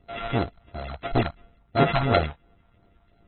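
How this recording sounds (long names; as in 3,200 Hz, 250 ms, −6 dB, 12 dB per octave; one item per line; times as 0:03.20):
a buzz of ramps at a fixed pitch in blocks of 64 samples
phaser sweep stages 4, 2.9 Hz, lowest notch 360–4,000 Hz
aliases and images of a low sample rate 5,400 Hz, jitter 0%
AAC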